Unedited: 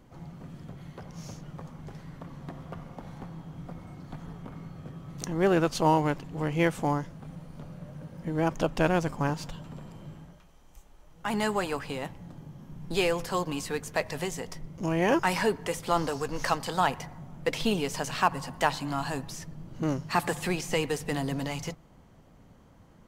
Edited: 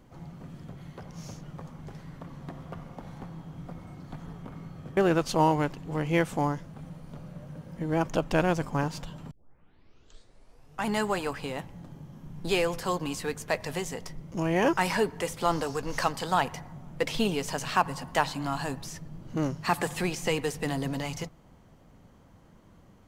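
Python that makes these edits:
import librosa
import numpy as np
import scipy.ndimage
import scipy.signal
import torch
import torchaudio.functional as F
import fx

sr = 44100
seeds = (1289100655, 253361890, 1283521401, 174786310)

y = fx.edit(x, sr, fx.cut(start_s=4.97, length_s=0.46),
    fx.tape_start(start_s=9.77, length_s=1.56), tone=tone)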